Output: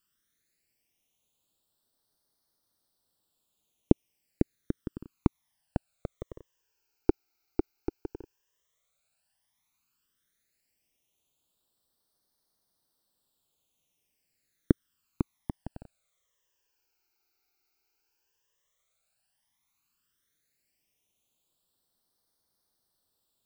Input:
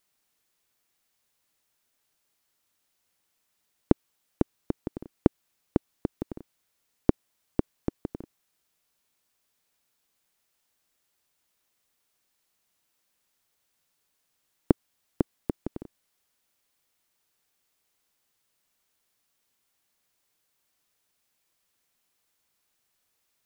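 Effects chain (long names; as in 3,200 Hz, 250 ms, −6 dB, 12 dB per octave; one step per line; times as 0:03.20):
all-pass phaser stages 12, 0.1 Hz, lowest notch 180–2,500 Hz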